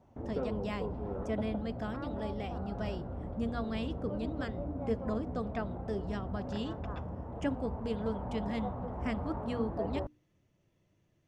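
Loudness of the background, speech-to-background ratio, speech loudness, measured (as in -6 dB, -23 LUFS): -40.0 LUFS, 1.0 dB, -39.0 LUFS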